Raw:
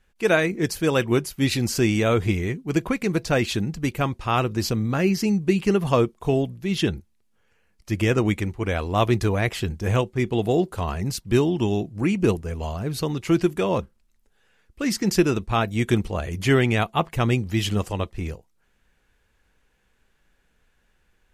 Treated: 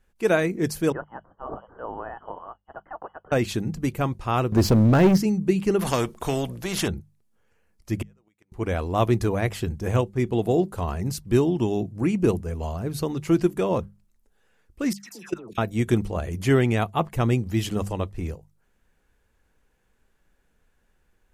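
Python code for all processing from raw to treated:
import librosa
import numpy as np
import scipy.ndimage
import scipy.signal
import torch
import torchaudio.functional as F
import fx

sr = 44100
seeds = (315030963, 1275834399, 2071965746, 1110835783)

y = fx.chain(x, sr, fx.cheby2_highpass(hz=880.0, order=4, stop_db=40),
    fx.freq_invert(carrier_hz=3100), at=(0.92, 3.32))
y = fx.chain(y, sr, fx.high_shelf(hz=3600.0, db=-11.0),
    fx.leveller(passes=3), at=(4.52, 5.18))
y = fx.chain(y, sr, fx.high_shelf(hz=5200.0, db=-4.0),
    fx.spectral_comp(ratio=2.0), at=(5.79, 6.88))
y = fx.chain(y, sr, fx.highpass(hz=630.0, slope=6),
    fx.gate_flip(shuts_db=-18.0, range_db=-39), at=(8.02, 8.52))
y = fx.chain(y, sr, fx.highpass(hz=620.0, slope=6),
    fx.dispersion(late='lows', ms=137.0, hz=1400.0),
    fx.level_steps(step_db=20), at=(14.93, 15.58))
y = fx.peak_eq(y, sr, hz=3000.0, db=-6.5, octaves=2.2)
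y = fx.hum_notches(y, sr, base_hz=50, count=4)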